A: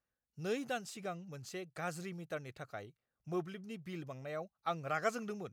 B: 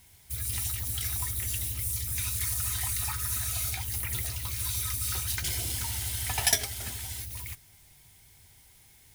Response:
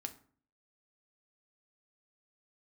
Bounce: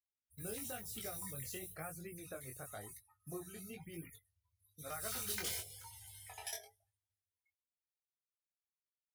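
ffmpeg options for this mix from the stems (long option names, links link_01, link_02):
-filter_complex "[0:a]bandreject=frequency=60:width_type=h:width=6,bandreject=frequency=120:width_type=h:width=6,bandreject=frequency=180:width_type=h:width=6,acompressor=threshold=-43dB:ratio=6,volume=2dB,asplit=3[link_01][link_02][link_03];[link_01]atrim=end=4.08,asetpts=PTS-STARTPTS,afade=type=out:start_time=4.076:duration=0.004:curve=hsin[link_04];[link_02]atrim=start=4.08:end=4.78,asetpts=PTS-STARTPTS,volume=0[link_05];[link_03]atrim=start=4.78,asetpts=PTS-STARTPTS,afade=type=in:duration=0.004:curve=hsin[link_06];[link_04][link_05][link_06]concat=n=3:v=0:a=1,asplit=2[link_07][link_08];[1:a]lowshelf=frequency=350:width_type=q:width=3:gain=-9.5,aeval=exprs='val(0)+0.000794*(sin(2*PI*50*n/s)+sin(2*PI*2*50*n/s)/2+sin(2*PI*3*50*n/s)/3+sin(2*PI*4*50*n/s)/4+sin(2*PI*5*50*n/s)/5)':channel_layout=same,volume=-1dB,afade=type=out:start_time=1.36:duration=0.66:silence=0.473151,afade=type=in:start_time=4.79:duration=0.45:silence=0.281838,afade=type=out:start_time=6.17:duration=0.78:silence=0.281838,asplit=2[link_09][link_10];[link_10]volume=-4dB[link_11];[link_08]apad=whole_len=403291[link_12];[link_09][link_12]sidechaingate=range=-23dB:threshold=-60dB:ratio=16:detection=peak[link_13];[2:a]atrim=start_sample=2205[link_14];[link_11][link_14]afir=irnorm=-1:irlink=0[link_15];[link_07][link_13][link_15]amix=inputs=3:normalize=0,afftdn=noise_reduction=33:noise_floor=-51,adynamicequalizer=threshold=0.00141:dfrequency=510:dqfactor=6.7:tfrequency=510:tqfactor=6.7:attack=5:release=100:ratio=0.375:range=2:mode=cutabove:tftype=bell,flanger=delay=18:depth=5.1:speed=1"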